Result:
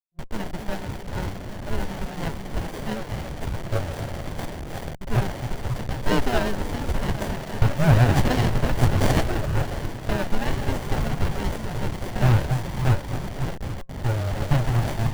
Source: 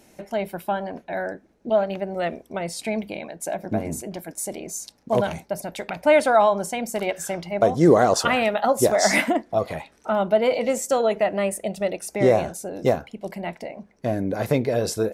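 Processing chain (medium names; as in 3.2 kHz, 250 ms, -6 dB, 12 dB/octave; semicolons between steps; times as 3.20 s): repeats whose band climbs or falls 268 ms, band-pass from 290 Hz, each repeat 0.7 oct, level -3.5 dB; time-frequency box 4.43–4.82 s, 280–3400 Hz -8 dB; bit crusher 6-bit; frequency shift +64 Hz; full-wave rectifier; FFT band-reject 170–530 Hz; sliding maximum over 33 samples; trim +5 dB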